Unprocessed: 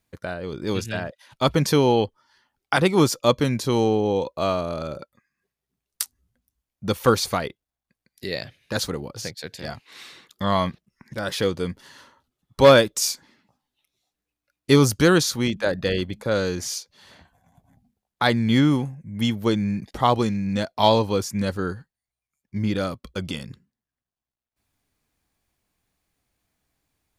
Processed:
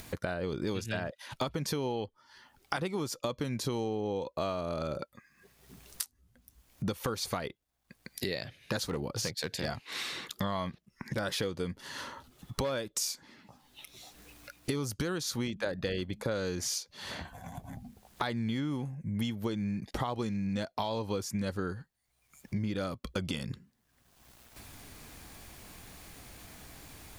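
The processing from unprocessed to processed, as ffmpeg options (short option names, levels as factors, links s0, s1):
-filter_complex "[0:a]asettb=1/sr,asplit=3[s0][s1][s2];[s0]atrim=end=8.884[s3];[s1]atrim=start=8.88:end=9.65,asetpts=PTS-STARTPTS,afade=t=in:d=0.004:c=qsin,afade=t=out:st=0.766:d=0.004:c=qsin,asoftclip=type=hard:threshold=0.0631[s4];[s2]atrim=start=9.646[s5];[s3][s4]acrossfade=d=0.004:c1=hsin:c2=qsin[s6];[s6][s5]acrossfade=d=0.004:c1=qsin:c2=hsin,acompressor=mode=upward:threshold=0.0251:ratio=2.5,alimiter=limit=0.251:level=0:latency=1:release=187,acompressor=threshold=0.0251:ratio=10,volume=1.26"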